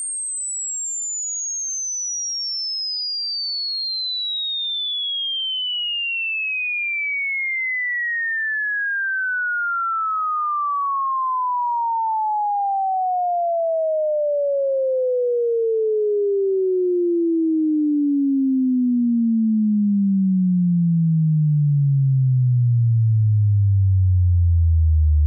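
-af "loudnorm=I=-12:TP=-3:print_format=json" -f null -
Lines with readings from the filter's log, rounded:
"input_i" : "-19.8",
"input_tp" : "-12.2",
"input_lra" : "3.7",
"input_thresh" : "-29.8",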